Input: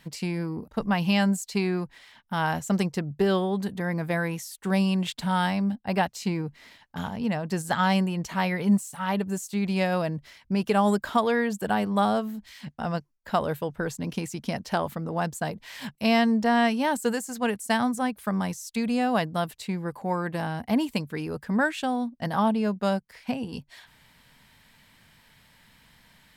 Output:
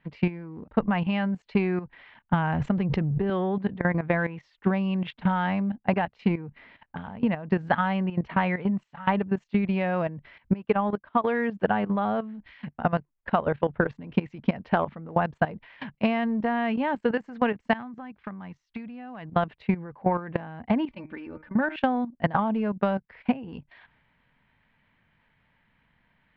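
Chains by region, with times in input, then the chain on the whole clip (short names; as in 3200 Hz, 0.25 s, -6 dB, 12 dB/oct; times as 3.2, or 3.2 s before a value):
2.33–3.3 low shelf 210 Hz +11.5 dB + backwards sustainer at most 65 dB/s
10.53–11.24 bell 1100 Hz +3.5 dB 0.29 oct + upward expander 2.5:1, over -30 dBFS
17.73–19.36 bell 520 Hz -6 dB 0.72 oct + compressor 2.5:1, threshold -38 dBFS + hard clip -29.5 dBFS
20.88–21.76 de-hum 156 Hz, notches 16 + auto swell 0.116 s + comb 3.4 ms, depth 64%
whole clip: inverse Chebyshev low-pass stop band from 10000 Hz, stop band 70 dB; level quantiser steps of 14 dB; transient shaper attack +8 dB, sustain +3 dB; gain +2 dB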